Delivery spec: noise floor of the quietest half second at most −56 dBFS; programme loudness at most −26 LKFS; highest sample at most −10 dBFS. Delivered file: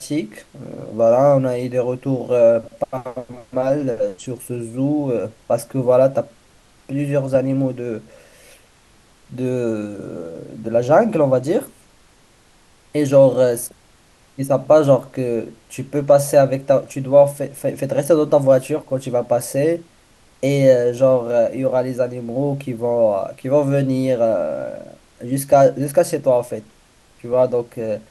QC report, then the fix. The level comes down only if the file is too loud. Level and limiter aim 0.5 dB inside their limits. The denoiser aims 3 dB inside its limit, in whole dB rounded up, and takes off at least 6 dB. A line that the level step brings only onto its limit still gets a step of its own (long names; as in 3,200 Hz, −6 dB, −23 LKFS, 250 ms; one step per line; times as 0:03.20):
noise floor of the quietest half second −52 dBFS: out of spec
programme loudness −18.0 LKFS: out of spec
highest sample −2.0 dBFS: out of spec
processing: level −8.5 dB